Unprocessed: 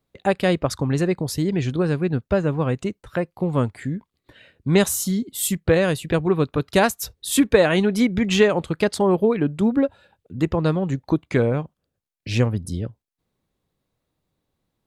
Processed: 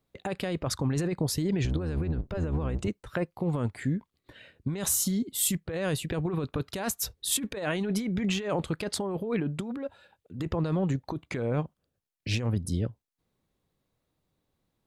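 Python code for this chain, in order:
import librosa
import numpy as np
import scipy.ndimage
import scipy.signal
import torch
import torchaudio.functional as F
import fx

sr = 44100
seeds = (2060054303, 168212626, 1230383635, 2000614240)

y = fx.octave_divider(x, sr, octaves=1, level_db=2.0, at=(1.64, 2.88))
y = fx.over_compress(y, sr, threshold_db=-23.0, ratio=-1.0)
y = fx.low_shelf(y, sr, hz=370.0, db=-7.0, at=(9.6, 10.4))
y = y * 10.0 ** (-5.5 / 20.0)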